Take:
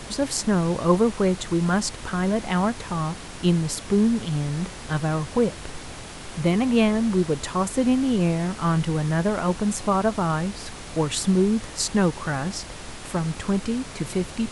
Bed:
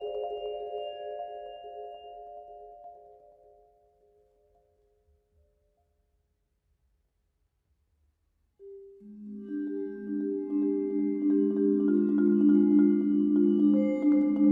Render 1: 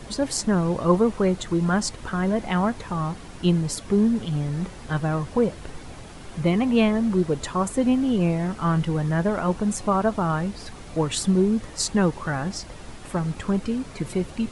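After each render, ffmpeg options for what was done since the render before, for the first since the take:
ffmpeg -i in.wav -af "afftdn=noise_reduction=8:noise_floor=-38" out.wav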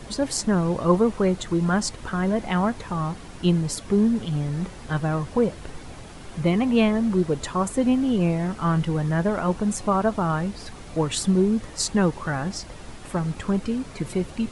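ffmpeg -i in.wav -af anull out.wav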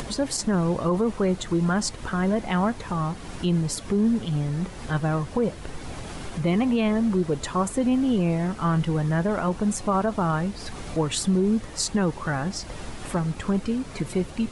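ffmpeg -i in.wav -af "alimiter=limit=-14.5dB:level=0:latency=1:release=35,acompressor=mode=upward:threshold=-27dB:ratio=2.5" out.wav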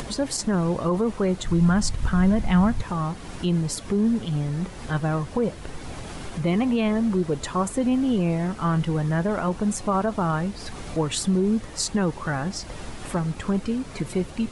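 ffmpeg -i in.wav -filter_complex "[0:a]asplit=3[link_01][link_02][link_03];[link_01]afade=type=out:start_time=1.44:duration=0.02[link_04];[link_02]asubboost=boost=8.5:cutoff=150,afade=type=in:start_time=1.44:duration=0.02,afade=type=out:start_time=2.81:duration=0.02[link_05];[link_03]afade=type=in:start_time=2.81:duration=0.02[link_06];[link_04][link_05][link_06]amix=inputs=3:normalize=0" out.wav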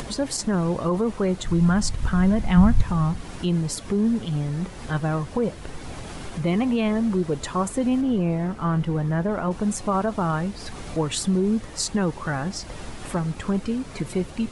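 ffmpeg -i in.wav -filter_complex "[0:a]asplit=3[link_01][link_02][link_03];[link_01]afade=type=out:start_time=2.56:duration=0.02[link_04];[link_02]asubboost=boost=4:cutoff=190,afade=type=in:start_time=2.56:duration=0.02,afade=type=out:start_time=3.2:duration=0.02[link_05];[link_03]afade=type=in:start_time=3.2:duration=0.02[link_06];[link_04][link_05][link_06]amix=inputs=3:normalize=0,asettb=1/sr,asplit=3[link_07][link_08][link_09];[link_07]atrim=end=8.014[link_10];[link_08]atrim=start=8.01:end=9.51,asetpts=PTS-STARTPTS,afade=type=in:duration=0.004:curve=qsin,afade=type=out:start_time=1.496:duration=0.004:curve=qsin,highshelf=frequency=2400:gain=-7.5[link_11];[link_09]atrim=start=9.506[link_12];[link_10][link_11]acrossfade=duration=0.004:curve1=hsin:curve2=qsin[link_13];[link_13][link_12]acrossfade=duration=0.004:curve1=qsin:curve2=hsin" out.wav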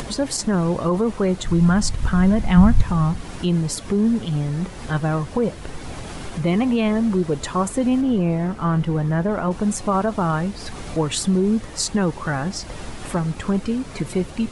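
ffmpeg -i in.wav -af "volume=3dB" out.wav

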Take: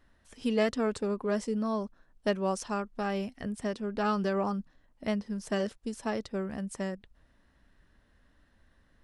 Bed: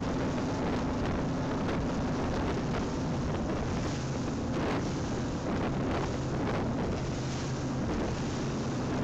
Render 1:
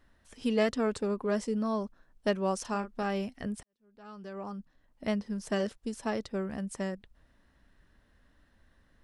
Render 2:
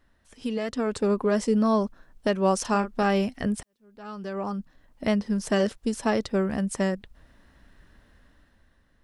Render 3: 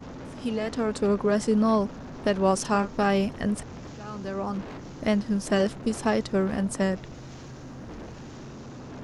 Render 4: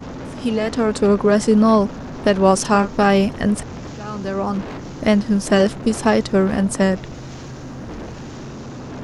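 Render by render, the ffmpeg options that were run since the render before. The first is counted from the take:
ffmpeg -i in.wav -filter_complex "[0:a]asettb=1/sr,asplit=3[link_01][link_02][link_03];[link_01]atrim=end=2.614[link_04];[link_02]atrim=start=2.61:end=3.03,asetpts=PTS-STARTPTS,afade=type=in:duration=0.004:curve=qsin,afade=type=out:start_time=0.416:duration=0.004:curve=qsin,asplit=2[link_05][link_06];[link_06]adelay=36,volume=-10dB[link_07];[link_05][link_07]amix=inputs=2:normalize=0,atrim=end_sample=18522[link_08];[link_03]atrim=start=3.026[link_09];[link_04][link_08]acrossfade=duration=0.004:curve1=hsin:curve2=qsin[link_10];[link_10][link_09]acrossfade=duration=0.004:curve1=qsin:curve2=hsin,asplit=2[link_11][link_12];[link_11]atrim=end=3.63,asetpts=PTS-STARTPTS,afade=type=out:start_time=3.626:duration=0.004:curve=hsin[link_13];[link_12]atrim=start=3.63,asetpts=PTS-STARTPTS,afade=type=in:duration=1.41:curve=qua[link_14];[link_13][link_14]concat=n=2:v=0:a=1" out.wav
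ffmpeg -i in.wav -af "alimiter=limit=-21.5dB:level=0:latency=1:release=201,dynaudnorm=framelen=130:gausssize=13:maxgain=9dB" out.wav
ffmpeg -i in.wav -i bed.wav -filter_complex "[1:a]volume=-9dB[link_01];[0:a][link_01]amix=inputs=2:normalize=0" out.wav
ffmpeg -i in.wav -af "volume=8.5dB" out.wav

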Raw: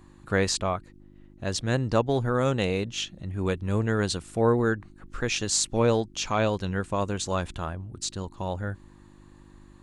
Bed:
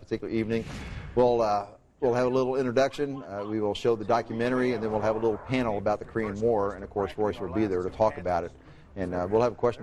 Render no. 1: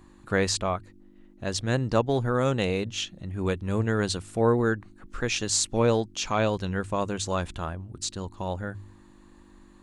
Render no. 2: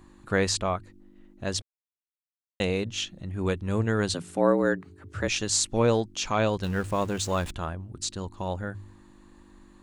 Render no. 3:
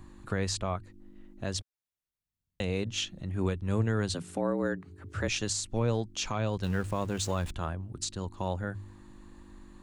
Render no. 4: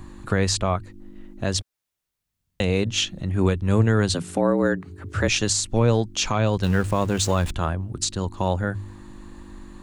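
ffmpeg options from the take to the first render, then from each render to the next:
ffmpeg -i in.wav -af "bandreject=frequency=50:width_type=h:width=4,bandreject=frequency=100:width_type=h:width=4,bandreject=frequency=150:width_type=h:width=4" out.wav
ffmpeg -i in.wav -filter_complex "[0:a]asettb=1/sr,asplit=3[link_01][link_02][link_03];[link_01]atrim=end=4.144[link_04];[link_02]atrim=start=4.14:end=5.28,asetpts=PTS-STARTPTS,afade=type=in:duration=0.004:curve=qsin,afade=type=out:start_time=1.136:duration=0.004:curve=qsin,afreqshift=77[link_05];[link_03]atrim=start=5.276[link_06];[link_04][link_05]acrossfade=duration=0.004:curve1=hsin:curve2=qsin[link_07];[link_07][link_06]acrossfade=duration=0.004:curve1=qsin:curve2=hsin,asettb=1/sr,asplit=3[link_08][link_09][link_10];[link_08]atrim=end=6.634[link_11];[link_09]atrim=start=6.63:end=7.52,asetpts=PTS-STARTPTS,afade=type=in:duration=0.004:curve=qsin,afade=type=out:start_time=0.886:duration=0.004:curve=qsin,aeval=exprs='val(0)+0.5*0.0119*sgn(val(0))':channel_layout=same[link_12];[link_10]atrim=start=7.516[link_13];[link_11][link_12]acrossfade=duration=0.004:curve1=hsin:curve2=qsin[link_14];[link_14][link_13]acrossfade=duration=0.004:curve1=qsin:curve2=hsin,asplit=3[link_15][link_16][link_17];[link_15]atrim=end=1.62,asetpts=PTS-STARTPTS,afade=type=out:start_time=1.616:duration=0.004:curve=hsin[link_18];[link_16]atrim=start=1.62:end=2.6,asetpts=PTS-STARTPTS,volume=0[link_19];[link_17]atrim=start=2.6,asetpts=PTS-STARTPTS,afade=type=in:duration=0.004:curve=hsin[link_20];[link_18][link_19][link_20]concat=n=3:v=0:a=1" out.wav
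ffmpeg -i in.wav -filter_complex "[0:a]acrossover=split=160[link_01][link_02];[link_01]acompressor=mode=upward:threshold=-44dB:ratio=2.5[link_03];[link_02]alimiter=limit=-21dB:level=0:latency=1:release=413[link_04];[link_03][link_04]amix=inputs=2:normalize=0" out.wav
ffmpeg -i in.wav -af "volume=9.5dB" out.wav

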